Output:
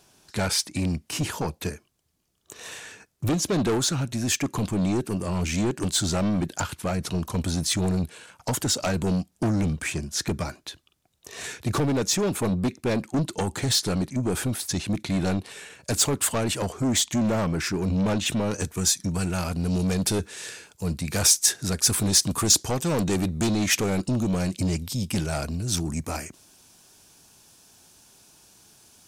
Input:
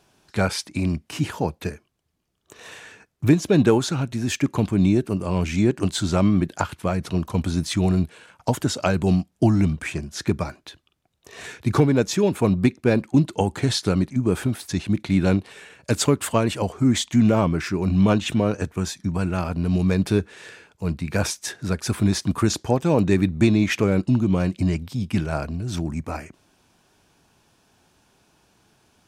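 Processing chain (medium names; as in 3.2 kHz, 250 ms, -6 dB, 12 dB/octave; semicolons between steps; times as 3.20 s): saturation -20 dBFS, distortion -8 dB; tone controls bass 0 dB, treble +8 dB, from 18.50 s treble +15 dB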